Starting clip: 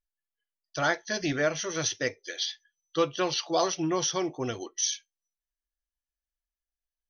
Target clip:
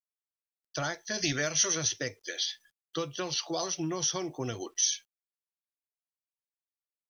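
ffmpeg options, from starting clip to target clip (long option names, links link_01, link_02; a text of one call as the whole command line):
ffmpeg -i in.wav -filter_complex "[0:a]acrossover=split=150|4900[link_01][link_02][link_03];[link_02]acompressor=threshold=-35dB:ratio=4[link_04];[link_01][link_04][link_03]amix=inputs=3:normalize=0,asettb=1/sr,asplit=3[link_05][link_06][link_07];[link_05]atrim=end=1.184[link_08];[link_06]atrim=start=1.18:end=1.75,asetpts=PTS-STARTPTS,afade=type=in:duration=0.004:curve=qsin,afade=type=out:start_time=0.566:duration=0.004:curve=qsin,highshelf=frequency=2000:gain=11[link_09];[link_07]atrim=start=1.746[link_10];[link_08][link_09]acrossfade=duration=0.004:curve1=hsin:curve2=qsin[link_11];[link_11][link_10]acrossfade=duration=0.004:curve1=qsin:curve2=hsin,acrusher=bits=11:mix=0:aa=0.000001,volume=2dB" out.wav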